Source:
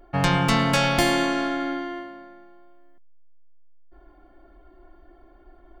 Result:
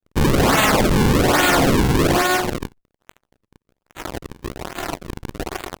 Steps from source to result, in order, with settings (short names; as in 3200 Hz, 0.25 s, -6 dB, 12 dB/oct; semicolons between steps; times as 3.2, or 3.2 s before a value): tilt +3.5 dB/oct; gate with hold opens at -49 dBFS; AGC gain up to 6 dB; crackle 530/s -51 dBFS; fuzz box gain 52 dB, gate -48 dBFS; grains 0.1 s, grains 20/s; decimation with a swept rate 39×, swing 160% 1.2 Hz; vibrato 0.94 Hz 83 cents